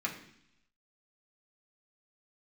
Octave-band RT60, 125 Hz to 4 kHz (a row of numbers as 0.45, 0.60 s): 0.95, 0.90, 0.70, 0.70, 0.90, 1.0 s